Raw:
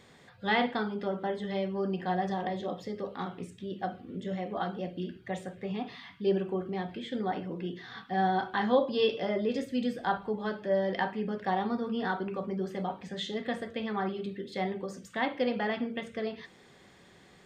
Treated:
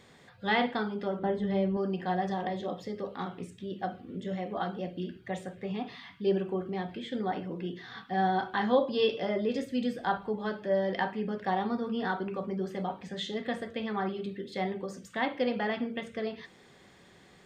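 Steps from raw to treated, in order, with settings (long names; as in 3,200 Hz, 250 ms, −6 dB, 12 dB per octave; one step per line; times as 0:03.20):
0:01.19–0:01.77: spectral tilt −2.5 dB per octave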